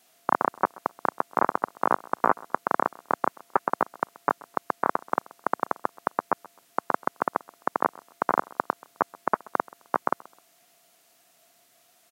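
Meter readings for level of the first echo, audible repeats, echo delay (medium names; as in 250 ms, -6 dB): -23.0 dB, 2, 130 ms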